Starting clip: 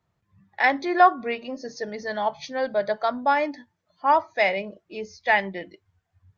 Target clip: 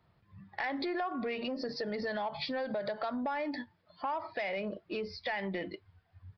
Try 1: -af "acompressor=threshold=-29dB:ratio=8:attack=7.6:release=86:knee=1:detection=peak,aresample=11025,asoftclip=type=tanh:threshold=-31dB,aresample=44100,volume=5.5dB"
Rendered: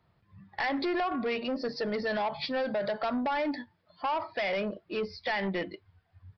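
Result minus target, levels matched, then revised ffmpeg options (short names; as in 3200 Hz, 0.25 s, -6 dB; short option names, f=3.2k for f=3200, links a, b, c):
compressor: peak gain reduction -8 dB
-af "acompressor=threshold=-38dB:ratio=8:attack=7.6:release=86:knee=1:detection=peak,aresample=11025,asoftclip=type=tanh:threshold=-31dB,aresample=44100,volume=5.5dB"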